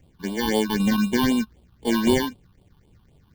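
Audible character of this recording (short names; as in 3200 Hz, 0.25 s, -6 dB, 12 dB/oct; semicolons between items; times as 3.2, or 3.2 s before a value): aliases and images of a low sample rate 1300 Hz, jitter 0%; phasing stages 6, 3.9 Hz, lowest notch 520–1800 Hz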